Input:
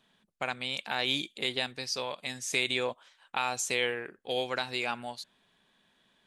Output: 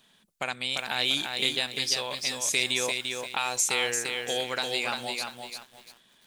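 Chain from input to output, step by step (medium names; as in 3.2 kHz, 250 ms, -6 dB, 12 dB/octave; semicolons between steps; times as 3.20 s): treble shelf 3.9 kHz +11.5 dB; in parallel at -1.5 dB: compression, threshold -36 dBFS, peak gain reduction 15.5 dB; on the sum: bit-crushed delay 345 ms, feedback 35%, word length 8-bit, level -4.5 dB; trim -2.5 dB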